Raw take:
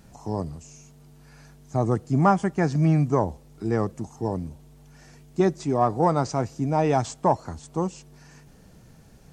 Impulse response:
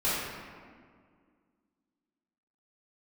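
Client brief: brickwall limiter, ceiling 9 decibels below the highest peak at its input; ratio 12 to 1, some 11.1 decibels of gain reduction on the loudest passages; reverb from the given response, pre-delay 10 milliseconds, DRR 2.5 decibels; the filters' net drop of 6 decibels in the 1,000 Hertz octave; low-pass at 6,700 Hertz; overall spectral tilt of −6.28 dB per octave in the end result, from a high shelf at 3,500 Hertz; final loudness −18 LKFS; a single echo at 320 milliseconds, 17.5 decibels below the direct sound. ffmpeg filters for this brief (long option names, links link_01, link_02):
-filter_complex "[0:a]lowpass=6700,equalizer=frequency=1000:width_type=o:gain=-8,highshelf=frequency=3500:gain=-4.5,acompressor=threshold=-27dB:ratio=12,alimiter=level_in=1.5dB:limit=-24dB:level=0:latency=1,volume=-1.5dB,aecho=1:1:320:0.133,asplit=2[link_01][link_02];[1:a]atrim=start_sample=2205,adelay=10[link_03];[link_02][link_03]afir=irnorm=-1:irlink=0,volume=-14dB[link_04];[link_01][link_04]amix=inputs=2:normalize=0,volume=17dB"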